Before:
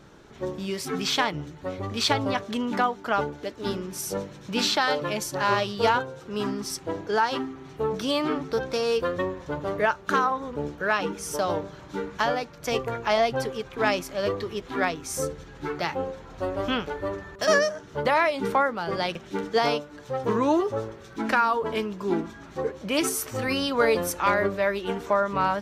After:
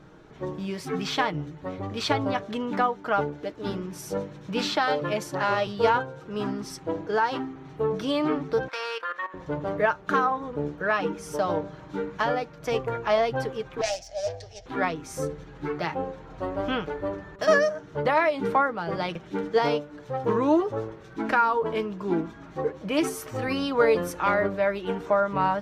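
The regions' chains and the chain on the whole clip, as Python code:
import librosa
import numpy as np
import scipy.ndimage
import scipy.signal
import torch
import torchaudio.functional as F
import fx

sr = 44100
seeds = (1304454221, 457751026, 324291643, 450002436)

y = fx.chain(x, sr, fx.low_shelf(hz=110.0, db=-9.0),
    fx.band_squash(depth_pct=40), at=(5.12, 5.67))
y = fx.chain(y, sr, fx.highpass(hz=1000.0, slope=12),
    fx.peak_eq(hz=1600.0, db=12.5, octaves=2.0),
    fx.level_steps(step_db=15), at=(8.68, 9.34))
y = fx.chain(y, sr, fx.self_delay(depth_ms=0.31),
    fx.curve_eq(hz=(100.0, 170.0, 350.0, 700.0, 1100.0, 1700.0, 2300.0, 3800.0, 5500.0, 13000.0), db=(0, -23, -25, 6, -25, -9, -8, -2, 11, -15)), at=(13.81, 14.66))
y = fx.high_shelf(y, sr, hz=3500.0, db=-11.0)
y = y + 0.36 * np.pad(y, (int(6.4 * sr / 1000.0), 0))[:len(y)]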